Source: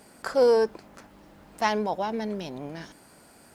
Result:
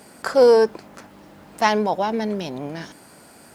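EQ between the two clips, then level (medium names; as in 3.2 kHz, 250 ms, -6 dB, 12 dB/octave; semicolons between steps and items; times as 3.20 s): high-pass 75 Hz; +6.5 dB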